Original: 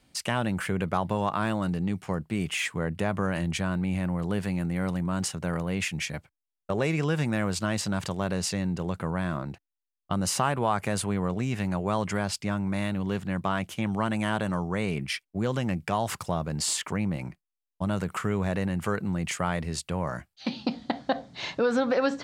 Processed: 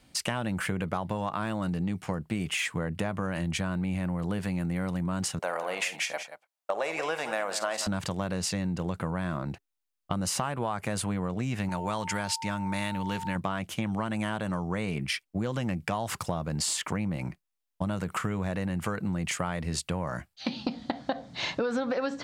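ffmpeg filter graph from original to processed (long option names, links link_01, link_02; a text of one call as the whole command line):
ffmpeg -i in.wav -filter_complex "[0:a]asettb=1/sr,asplit=3[link_01][link_02][link_03];[link_01]atrim=end=5.394[link_04];[link_02]atrim=start=5.39:end=7.87,asetpts=PTS-STARTPTS,afade=type=in:duration=0.004:curve=qsin,afade=type=out:start_time=2.476:duration=0.004:curve=qsin,highpass=frequency=660:width_type=q:width=2,aecho=1:1:50|180:0.188|0.237,atrim=end_sample=109368[link_05];[link_03]atrim=start=7.866[link_06];[link_04][link_05]acrossfade=duration=0.004:curve1=hsin:curve2=qsin[link_07];[link_07][link_06]acrossfade=duration=0.004:curve1=qsin:curve2=hsin,asettb=1/sr,asplit=3[link_08][link_09][link_10];[link_08]atrim=end=11.694[link_11];[link_09]atrim=start=11.69:end=13.36,asetpts=PTS-STARTPTS,afade=type=in:duration=0.004:curve=qsin,afade=type=out:start_time=1.666:duration=0.004:curve=qsin,deesser=0.35,tiltshelf=frequency=1400:gain=-4.5,aeval=exprs='val(0)+0.0141*sin(2*PI*900*n/s)':channel_layout=same[link_12];[link_10]atrim=start=13.356[link_13];[link_11][link_12]acrossfade=duration=0.004:curve1=hsin:curve2=qsin[link_14];[link_14][link_13]acrossfade=duration=0.004:curve1=qsin:curve2=hsin,bandreject=frequency=400:width=12,acompressor=threshold=-30dB:ratio=6,volume=3.5dB" out.wav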